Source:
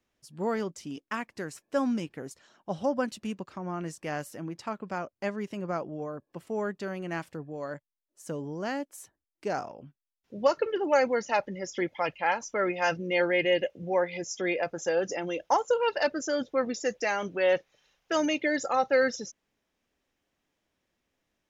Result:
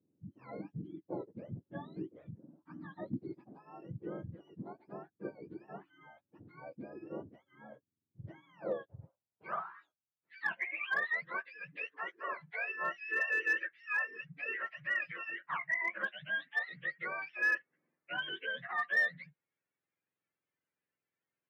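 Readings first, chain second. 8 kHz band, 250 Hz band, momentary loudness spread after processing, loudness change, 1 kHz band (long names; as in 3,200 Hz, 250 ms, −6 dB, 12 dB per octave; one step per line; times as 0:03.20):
below −25 dB, −14.5 dB, 21 LU, −7.0 dB, −12.5 dB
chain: frequency axis turned over on the octave scale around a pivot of 970 Hz
head-to-tape spacing loss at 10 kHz 39 dB
band-pass filter sweep 290 Hz → 2,200 Hz, 0:08.01–0:10.45
in parallel at −5.5 dB: gain into a clipping stage and back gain 34 dB
on the sum: level +3 dB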